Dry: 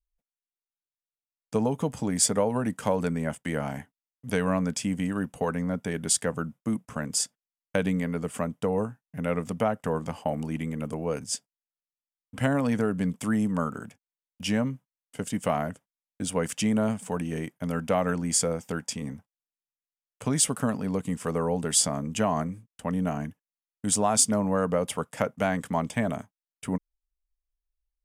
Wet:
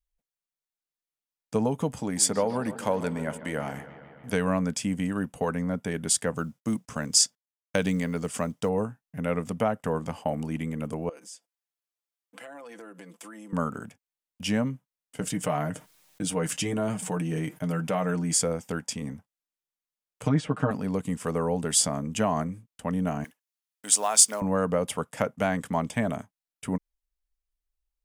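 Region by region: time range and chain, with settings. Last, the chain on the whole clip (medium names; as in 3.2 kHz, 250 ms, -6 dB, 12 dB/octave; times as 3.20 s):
1.99–4.33 s: bass shelf 190 Hz -6.5 dB + bucket-brigade echo 144 ms, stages 4096, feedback 72%, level -14.5 dB
6.36–8.69 s: peaking EQ 5.5 kHz +9.5 dB 1.3 oct + companded quantiser 8-bit
11.09–13.53 s: high-pass 310 Hz 24 dB/octave + comb 5.9 ms, depth 79% + compression, threshold -42 dBFS
15.20–18.34 s: comb 6.5 ms, depth 43% + flange 1.1 Hz, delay 5.2 ms, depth 2.3 ms, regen -50% + level flattener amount 50%
20.23–20.71 s: low-pass that closes with the level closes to 1.8 kHz, closed at -21.5 dBFS + comb 6.5 ms, depth 90%
23.24–24.42 s: block-companded coder 7-bit + high-pass 440 Hz + tilt shelf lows -4.5 dB, about 1.2 kHz
whole clip: none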